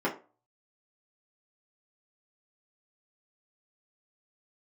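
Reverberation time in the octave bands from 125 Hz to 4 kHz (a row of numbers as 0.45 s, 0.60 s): 0.30 s, 0.35 s, 0.35 s, 0.35 s, 0.25 s, 0.20 s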